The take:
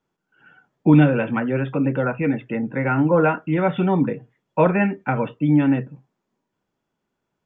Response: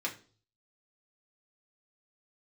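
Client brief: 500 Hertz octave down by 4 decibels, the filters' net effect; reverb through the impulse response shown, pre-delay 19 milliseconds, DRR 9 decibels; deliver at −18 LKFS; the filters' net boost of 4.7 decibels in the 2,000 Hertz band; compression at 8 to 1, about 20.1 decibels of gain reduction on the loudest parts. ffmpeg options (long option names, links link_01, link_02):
-filter_complex "[0:a]equalizer=frequency=500:width_type=o:gain=-5,equalizer=frequency=2000:width_type=o:gain=7,acompressor=threshold=-31dB:ratio=8,asplit=2[link_01][link_02];[1:a]atrim=start_sample=2205,adelay=19[link_03];[link_02][link_03]afir=irnorm=-1:irlink=0,volume=-13dB[link_04];[link_01][link_04]amix=inputs=2:normalize=0,volume=16.5dB"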